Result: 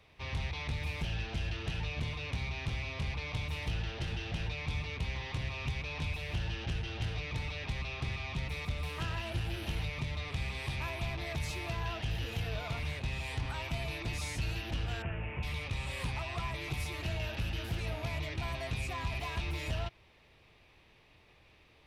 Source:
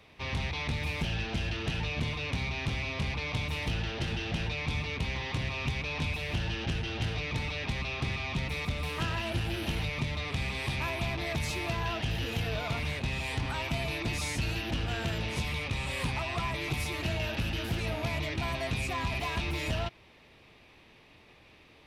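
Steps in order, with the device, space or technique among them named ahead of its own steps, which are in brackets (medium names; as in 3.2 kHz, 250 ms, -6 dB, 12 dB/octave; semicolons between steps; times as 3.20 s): 15.02–15.43 s: elliptic low-pass 2.7 kHz, stop band 40 dB; low shelf boost with a cut just above (bass shelf 100 Hz +6.5 dB; peaking EQ 240 Hz -5 dB 0.91 oct); trim -5.5 dB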